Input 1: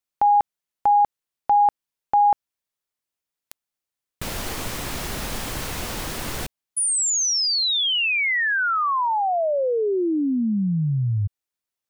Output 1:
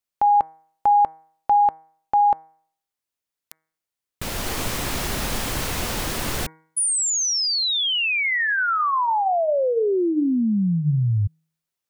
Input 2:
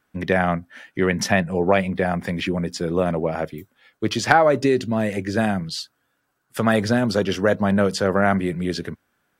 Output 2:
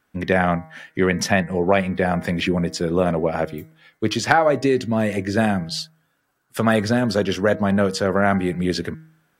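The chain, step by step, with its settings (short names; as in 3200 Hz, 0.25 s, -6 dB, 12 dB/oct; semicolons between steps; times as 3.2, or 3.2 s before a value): de-hum 159 Hz, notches 14; in parallel at +2 dB: vocal rider within 4 dB 0.5 s; on the sum: gain -6 dB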